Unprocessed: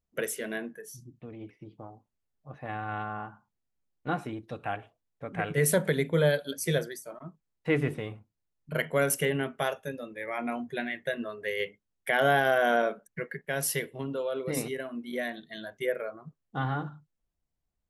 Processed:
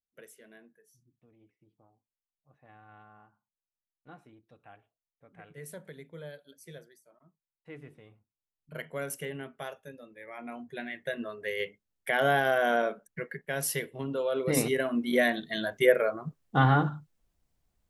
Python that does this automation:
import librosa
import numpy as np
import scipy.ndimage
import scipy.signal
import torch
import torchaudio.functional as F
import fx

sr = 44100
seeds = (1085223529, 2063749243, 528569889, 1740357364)

y = fx.gain(x, sr, db=fx.line((7.91, -20.0), (8.8, -10.0), (10.36, -10.0), (11.21, -1.5), (13.9, -1.5), (14.93, 8.5)))